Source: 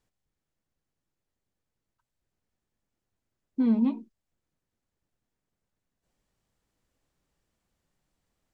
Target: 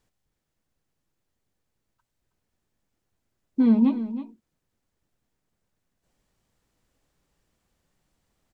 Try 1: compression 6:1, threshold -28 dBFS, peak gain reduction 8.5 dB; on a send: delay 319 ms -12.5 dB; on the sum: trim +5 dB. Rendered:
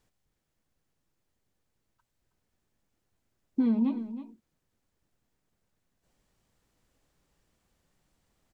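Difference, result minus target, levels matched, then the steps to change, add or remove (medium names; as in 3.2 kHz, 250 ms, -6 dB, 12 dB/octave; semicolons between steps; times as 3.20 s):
compression: peak gain reduction +8.5 dB
remove: compression 6:1, threshold -28 dBFS, peak gain reduction 8.5 dB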